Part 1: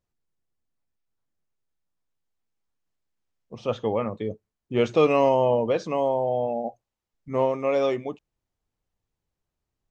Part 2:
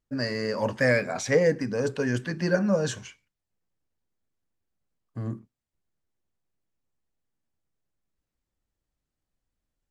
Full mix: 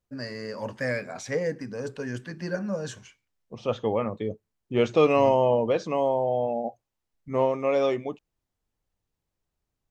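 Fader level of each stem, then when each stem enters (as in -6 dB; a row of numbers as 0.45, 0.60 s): -0.5, -6.5 dB; 0.00, 0.00 s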